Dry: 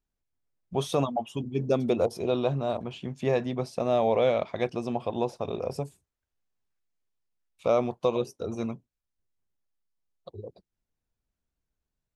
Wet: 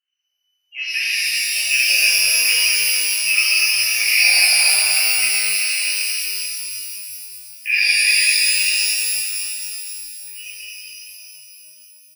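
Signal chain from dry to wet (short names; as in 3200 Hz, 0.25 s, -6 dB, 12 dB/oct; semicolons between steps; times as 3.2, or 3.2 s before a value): inverted band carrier 3000 Hz; LFO high-pass sine 2.5 Hz 550–2200 Hz; on a send: echo 0.234 s -6 dB; on the sum: shimmer reverb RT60 3.1 s, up +12 st, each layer -2 dB, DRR -11.5 dB; gain -8.5 dB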